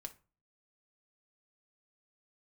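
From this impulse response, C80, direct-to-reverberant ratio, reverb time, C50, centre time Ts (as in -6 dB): 24.0 dB, 4.5 dB, 0.35 s, 16.0 dB, 5 ms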